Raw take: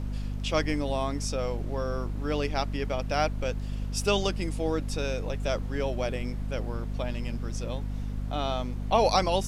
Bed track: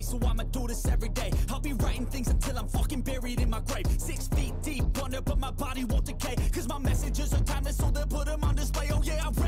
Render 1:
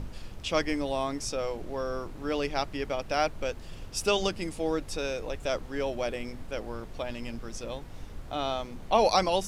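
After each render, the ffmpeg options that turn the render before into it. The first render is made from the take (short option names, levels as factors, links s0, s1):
-af "bandreject=f=50:t=h:w=6,bandreject=f=100:t=h:w=6,bandreject=f=150:t=h:w=6,bandreject=f=200:t=h:w=6,bandreject=f=250:t=h:w=6"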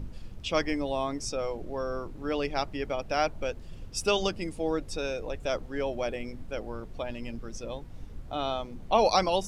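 -af "afftdn=nr=8:nf=-43"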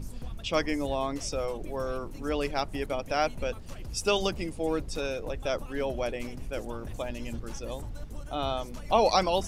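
-filter_complex "[1:a]volume=0.188[s0];[0:a][s0]amix=inputs=2:normalize=0"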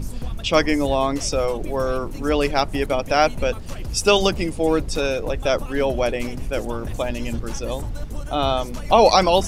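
-af "volume=3.16,alimiter=limit=0.794:level=0:latency=1"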